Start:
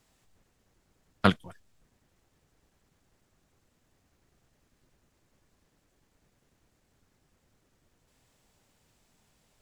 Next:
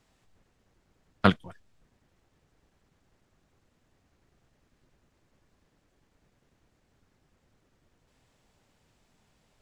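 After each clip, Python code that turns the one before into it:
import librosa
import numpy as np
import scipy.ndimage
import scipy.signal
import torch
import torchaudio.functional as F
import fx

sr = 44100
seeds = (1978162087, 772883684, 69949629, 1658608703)

y = fx.high_shelf(x, sr, hz=7500.0, db=-11.5)
y = y * 10.0 ** (1.5 / 20.0)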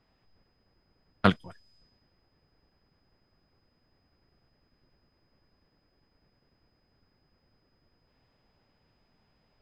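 y = x + 10.0 ** (-64.0 / 20.0) * np.sin(2.0 * np.pi * 5000.0 * np.arange(len(x)) / sr)
y = fx.env_lowpass(y, sr, base_hz=2300.0, full_db=-39.0)
y = y * 10.0 ** (-1.0 / 20.0)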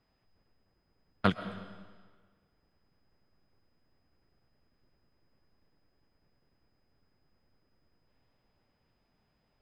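y = fx.rev_freeverb(x, sr, rt60_s=1.5, hf_ratio=0.95, predelay_ms=85, drr_db=11.5)
y = y * 10.0 ** (-5.0 / 20.0)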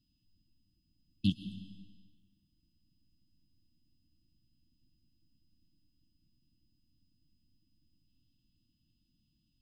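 y = fx.brickwall_bandstop(x, sr, low_hz=340.0, high_hz=2600.0)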